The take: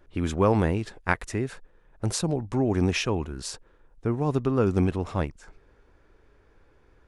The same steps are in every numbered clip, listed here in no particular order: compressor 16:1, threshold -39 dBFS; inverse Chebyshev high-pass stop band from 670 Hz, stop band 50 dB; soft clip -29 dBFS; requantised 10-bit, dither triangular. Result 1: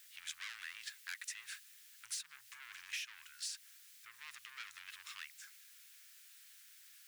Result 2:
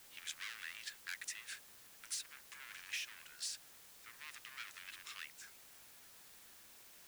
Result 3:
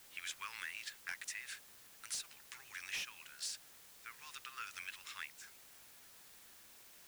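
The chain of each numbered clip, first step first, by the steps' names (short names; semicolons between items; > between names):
requantised > soft clip > inverse Chebyshev high-pass > compressor; soft clip > inverse Chebyshev high-pass > compressor > requantised; inverse Chebyshev high-pass > soft clip > compressor > requantised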